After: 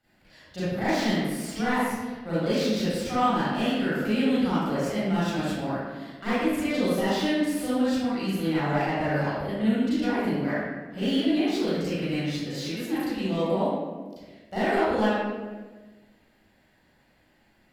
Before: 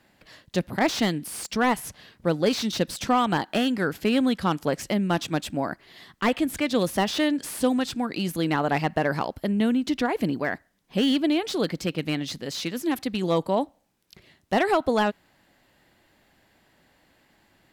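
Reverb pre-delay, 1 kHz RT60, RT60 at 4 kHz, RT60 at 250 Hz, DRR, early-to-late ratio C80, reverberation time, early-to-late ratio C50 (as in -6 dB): 33 ms, 1.2 s, 0.85 s, 1.7 s, -13.0 dB, -1.0 dB, 1.4 s, -6.5 dB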